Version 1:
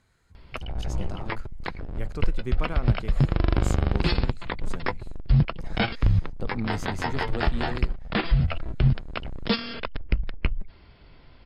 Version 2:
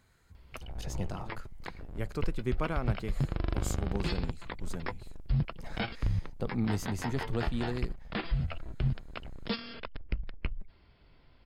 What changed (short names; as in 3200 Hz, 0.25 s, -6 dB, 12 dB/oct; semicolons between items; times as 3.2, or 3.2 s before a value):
background -9.5 dB; master: remove LPF 11000 Hz 12 dB/oct